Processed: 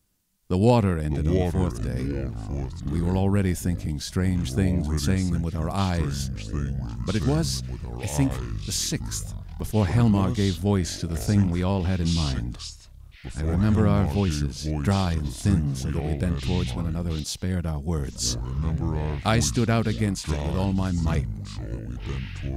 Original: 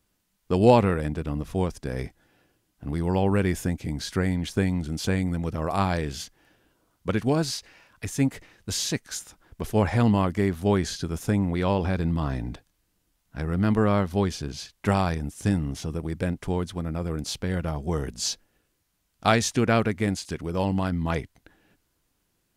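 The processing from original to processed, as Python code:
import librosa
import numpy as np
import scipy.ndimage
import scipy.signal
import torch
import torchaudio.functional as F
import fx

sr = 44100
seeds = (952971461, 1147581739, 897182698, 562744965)

y = fx.bass_treble(x, sr, bass_db=7, treble_db=7)
y = fx.echo_pitch(y, sr, ms=430, semitones=-5, count=3, db_per_echo=-6.0)
y = y * 10.0 ** (-4.0 / 20.0)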